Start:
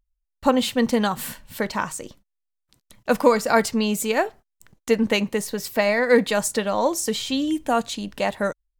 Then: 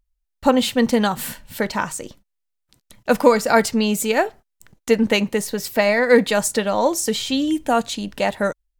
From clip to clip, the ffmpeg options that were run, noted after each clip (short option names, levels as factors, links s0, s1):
-af "bandreject=f=1100:w=13,volume=1.41"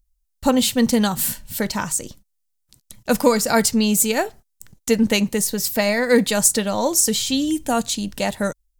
-af "bass=f=250:g=8,treble=f=4000:g=12,volume=0.668"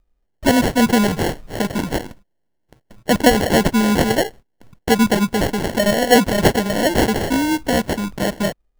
-af "acrusher=samples=36:mix=1:aa=0.000001,volume=1.33"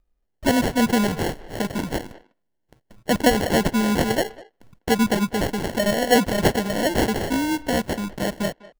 -filter_complex "[0:a]asplit=2[s0][s1];[s1]adelay=200,highpass=300,lowpass=3400,asoftclip=type=hard:threshold=0.316,volume=0.126[s2];[s0][s2]amix=inputs=2:normalize=0,volume=0.596"